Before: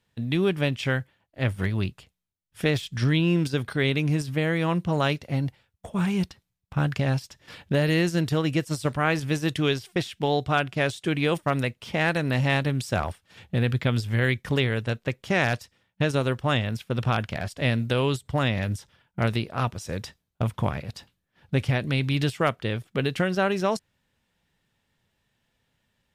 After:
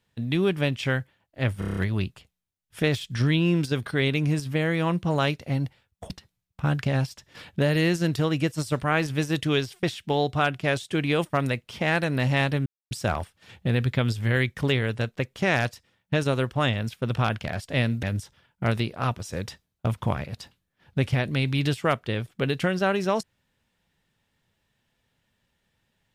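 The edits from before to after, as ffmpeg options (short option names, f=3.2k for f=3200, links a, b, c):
-filter_complex "[0:a]asplit=10[a][b][c][d][e][f][g][h][i][j];[a]atrim=end=1.622[k];[b]atrim=start=1.588:end=1.622[l];[c]atrim=start=1.588:end=1.622[m];[d]atrim=start=1.588:end=1.622[n];[e]atrim=start=1.588:end=1.622[o];[f]atrim=start=1.588:end=1.622[p];[g]atrim=start=1.588:end=5.922[q];[h]atrim=start=6.228:end=12.79,asetpts=PTS-STARTPTS,afade=t=out:st=6.558:d=0.004:c=hsin,apad=pad_dur=0.25[r];[i]atrim=start=12.79:end=17.912,asetpts=PTS-STARTPTS,afade=t=in:d=0.004:c=hsin[s];[j]atrim=start=18.588[t];[k][l]acrossfade=d=0.004:c1=hsin:c2=hsin[u];[u][m]acrossfade=d=0.004:c1=hsin:c2=hsin[v];[v][n]acrossfade=d=0.004:c1=hsin:c2=hsin[w];[w][o]acrossfade=d=0.004:c1=hsin:c2=hsin[x];[x][p]acrossfade=d=0.004:c1=hsin:c2=hsin[y];[y][q]acrossfade=d=0.004:c1=hsin:c2=hsin[z];[r][s]concat=n=2:v=0:a=1[aa];[z][aa]acrossfade=d=0.004:c1=hsin:c2=hsin[ab];[ab][t]acrossfade=d=0.004:c1=hsin:c2=hsin"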